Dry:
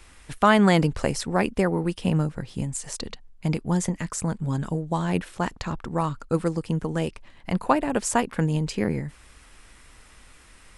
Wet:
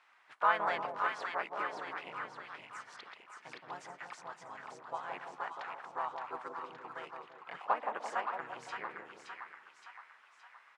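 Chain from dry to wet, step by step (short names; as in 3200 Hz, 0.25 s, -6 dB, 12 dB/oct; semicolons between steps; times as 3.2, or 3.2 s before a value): ladder band-pass 1500 Hz, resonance 25%; harmoniser -4 st -2 dB, +3 st -14 dB; split-band echo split 990 Hz, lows 0.17 s, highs 0.569 s, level -4 dB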